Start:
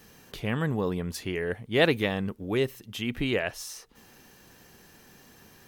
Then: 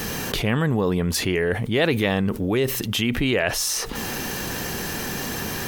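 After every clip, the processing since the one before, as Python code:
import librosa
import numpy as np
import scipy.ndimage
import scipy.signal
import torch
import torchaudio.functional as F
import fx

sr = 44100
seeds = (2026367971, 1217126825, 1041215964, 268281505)

y = fx.env_flatten(x, sr, amount_pct=70)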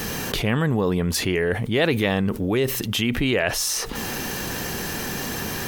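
y = x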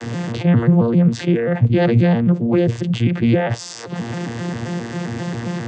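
y = fx.vocoder_arp(x, sr, chord='bare fifth', root=46, every_ms=133)
y = y * librosa.db_to_amplitude(7.5)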